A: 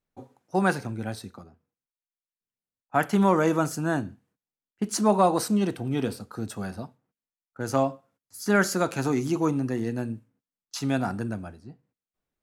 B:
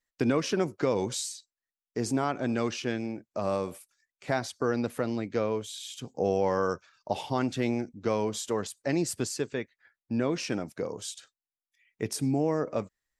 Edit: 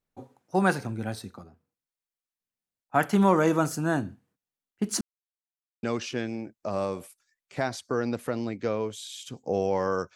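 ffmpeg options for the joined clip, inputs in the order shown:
-filter_complex "[0:a]apad=whole_dur=10.15,atrim=end=10.15,asplit=2[s0][s1];[s0]atrim=end=5.01,asetpts=PTS-STARTPTS,afade=t=out:st=5.006:d=0.004:c=hsin[s2];[s1]atrim=start=5.01:end=5.83,asetpts=PTS-STARTPTS,volume=0[s3];[1:a]atrim=start=2.54:end=6.86,asetpts=PTS-STARTPTS,afade=t=in:d=0.004:c=hsin[s4];[s2][s3][s4]concat=n=3:v=0:a=1"

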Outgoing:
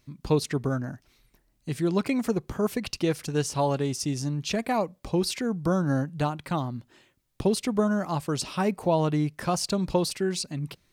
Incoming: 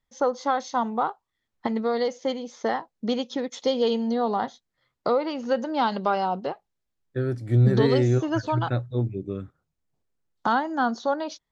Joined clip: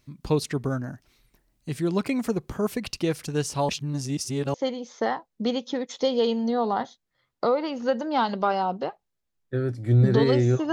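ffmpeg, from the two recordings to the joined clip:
-filter_complex "[0:a]apad=whole_dur=10.72,atrim=end=10.72,asplit=2[s0][s1];[s0]atrim=end=3.692[s2];[s1]atrim=start=3.688:end=4.542,asetpts=PTS-STARTPTS,areverse[s3];[1:a]atrim=start=2.168:end=8.35[s4];[s2][s3]acrossfade=d=0.004:c1=hsin:c2=hsin[s5];[s5][s4]acrossfade=d=0.004:c1=hsin:c2=hsin"

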